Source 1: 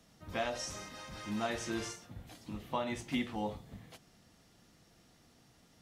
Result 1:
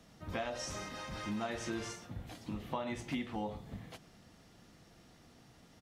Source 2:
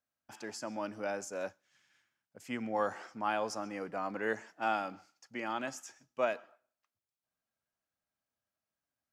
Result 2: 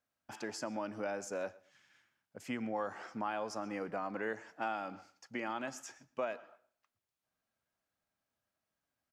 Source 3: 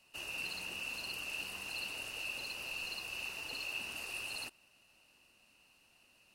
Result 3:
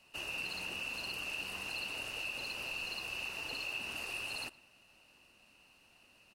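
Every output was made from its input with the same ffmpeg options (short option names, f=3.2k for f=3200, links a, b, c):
-filter_complex "[0:a]highshelf=f=4.5k:g=-6,acompressor=threshold=-41dB:ratio=3,asplit=2[a][b];[b]adelay=116,lowpass=f=4.1k:p=1,volume=-21.5dB,asplit=2[c][d];[d]adelay=116,lowpass=f=4.1k:p=1,volume=0.25[e];[a][c][e]amix=inputs=3:normalize=0,volume=4.5dB"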